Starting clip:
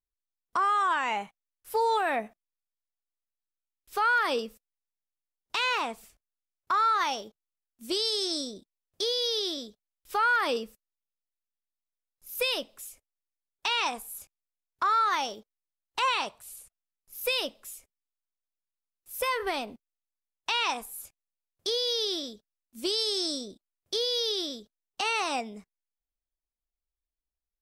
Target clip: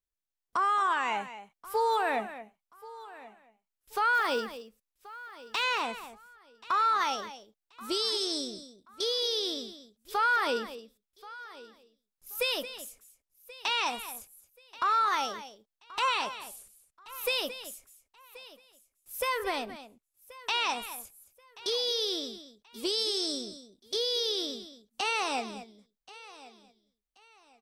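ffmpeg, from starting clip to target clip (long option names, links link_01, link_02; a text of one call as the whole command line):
ffmpeg -i in.wav -filter_complex "[0:a]asplit=2[link_01][link_02];[link_02]aecho=0:1:1081|2162:0.112|0.0325[link_03];[link_01][link_03]amix=inputs=2:normalize=0,asplit=3[link_04][link_05][link_06];[link_04]afade=type=out:start_time=4.13:duration=0.02[link_07];[link_05]acrusher=bits=7:mode=log:mix=0:aa=0.000001,afade=type=in:start_time=4.13:duration=0.02,afade=type=out:start_time=5.62:duration=0.02[link_08];[link_06]afade=type=in:start_time=5.62:duration=0.02[link_09];[link_07][link_08][link_09]amix=inputs=3:normalize=0,asplit=2[link_10][link_11];[link_11]aecho=0:1:223:0.224[link_12];[link_10][link_12]amix=inputs=2:normalize=0,volume=-1.5dB" out.wav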